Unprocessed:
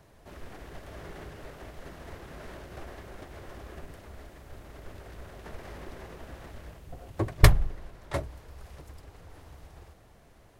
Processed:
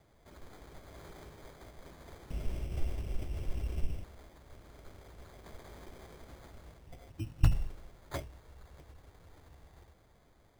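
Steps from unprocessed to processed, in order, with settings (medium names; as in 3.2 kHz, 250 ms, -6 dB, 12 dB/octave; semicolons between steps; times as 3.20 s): 2.30–4.04 s: tilt EQ -4.5 dB/octave; 7.20–7.50 s: spectral replace 340–6100 Hz before; sample-and-hold 16×; trim -7.5 dB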